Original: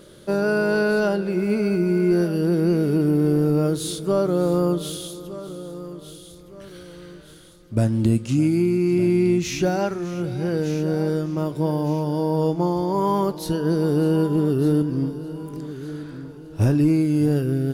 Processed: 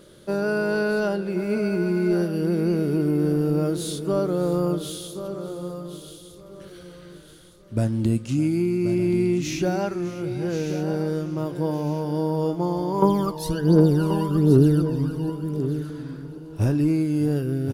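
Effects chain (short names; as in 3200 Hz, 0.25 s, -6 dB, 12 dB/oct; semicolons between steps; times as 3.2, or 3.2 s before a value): 13.02–15.3 phaser 1.3 Hz, delay 1.2 ms, feedback 72%; echo 1.08 s -10.5 dB; gain -3 dB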